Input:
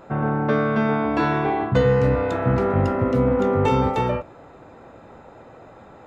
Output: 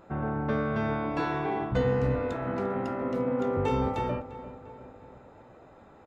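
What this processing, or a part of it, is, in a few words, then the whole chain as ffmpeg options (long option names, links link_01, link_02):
octave pedal: -filter_complex "[0:a]asettb=1/sr,asplit=3[link_01][link_02][link_03];[link_01]atrim=end=0.744[link_04];[link_02]atrim=start=0.74:end=1.72,asetpts=PTS-STARTPTS,afade=type=in:duration=0.004:curve=qsin,afade=type=out:start_time=0.976:duration=0.004:curve=qsin,highshelf=frequency=5500:gain=5.5[link_05];[link_03]atrim=start=1.716[link_06];[link_04][link_05]acrossfade=duration=0.004:curve1=hsin:curve2=qsin[link_07];[link_07][link_06]acrossfade=duration=0.004:curve1=qsin:curve2=hsin,asettb=1/sr,asplit=3[link_08][link_09][link_10];[link_08]atrim=end=2.334[link_11];[link_09]atrim=start=2.33:end=3.57,asetpts=PTS-STARTPTS,afade=type=in:duration=0.004:curve=qsin,afade=type=out:start_time=1.236:duration=0.004:curve=qsin,highpass=frequency=210:width=0.5412,highpass=frequency=210:width=1.3066[link_12];[link_10]atrim=start=3.566[link_13];[link_11][link_12]acrossfade=duration=0.004:curve1=hsin:curve2=qsin[link_14];[link_14][link_13]acrossfade=duration=0.004:curve1=qsin:curve2=hsin,asplit=2[link_15][link_16];[link_16]adelay=347,lowpass=frequency=3100:poles=1,volume=-14.5dB,asplit=2[link_17][link_18];[link_18]adelay=347,lowpass=frequency=3100:poles=1,volume=0.55,asplit=2[link_19][link_20];[link_20]adelay=347,lowpass=frequency=3100:poles=1,volume=0.55,asplit=2[link_21][link_22];[link_22]adelay=347,lowpass=frequency=3100:poles=1,volume=0.55,asplit=2[link_23][link_24];[link_24]adelay=347,lowpass=frequency=3100:poles=1,volume=0.55[link_25];[link_15][link_17][link_19][link_21][link_23][link_25]amix=inputs=6:normalize=0,asplit=2[link_26][link_27];[link_27]asetrate=22050,aresample=44100,atempo=2,volume=-9dB[link_28];[link_26][link_28]amix=inputs=2:normalize=0,volume=-9dB"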